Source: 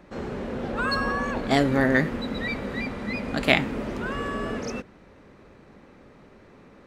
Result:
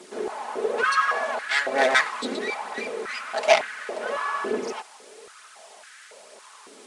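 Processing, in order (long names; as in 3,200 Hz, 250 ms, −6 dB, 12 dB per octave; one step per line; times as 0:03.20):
lower of the sound and its delayed copy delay 4.7 ms
0:01.78–0:02.36: high-shelf EQ 2,900 Hz +9.5 dB
bit-depth reduction 8 bits, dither triangular
downsampling to 22,050 Hz
phase shifter 1.1 Hz, delay 4.1 ms, feedback 35%
high-pass on a step sequencer 3.6 Hz 360–1,600 Hz
level −1 dB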